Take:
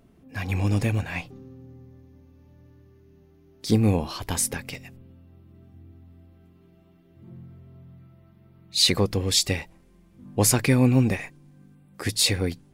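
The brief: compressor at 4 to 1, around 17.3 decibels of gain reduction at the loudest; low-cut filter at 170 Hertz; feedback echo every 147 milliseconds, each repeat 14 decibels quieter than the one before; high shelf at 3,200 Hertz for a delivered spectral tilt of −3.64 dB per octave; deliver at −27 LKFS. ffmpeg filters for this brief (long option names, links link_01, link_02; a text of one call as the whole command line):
ffmpeg -i in.wav -af "highpass=170,highshelf=frequency=3200:gain=-4.5,acompressor=threshold=-38dB:ratio=4,aecho=1:1:147|294:0.2|0.0399,volume=14dB" out.wav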